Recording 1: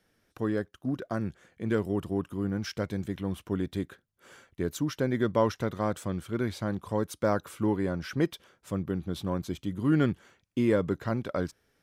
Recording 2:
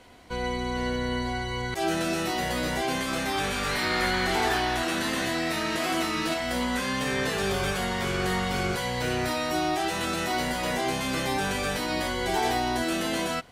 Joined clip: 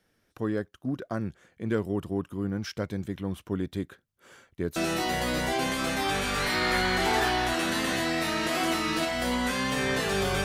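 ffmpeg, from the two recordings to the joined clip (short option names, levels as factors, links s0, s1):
-filter_complex "[0:a]apad=whole_dur=10.44,atrim=end=10.44,atrim=end=4.762[s0];[1:a]atrim=start=2.048:end=7.73[s1];[s0][s1]acrossfade=d=0.004:c1=hsin:c2=hsin"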